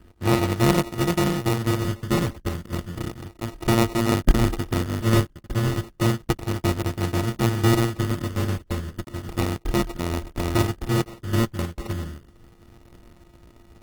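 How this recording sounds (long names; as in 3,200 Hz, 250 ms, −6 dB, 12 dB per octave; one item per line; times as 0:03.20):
a buzz of ramps at a fixed pitch in blocks of 128 samples
phaser sweep stages 12, 0.32 Hz, lowest notch 650–1,700 Hz
aliases and images of a low sample rate 1,600 Hz, jitter 0%
Opus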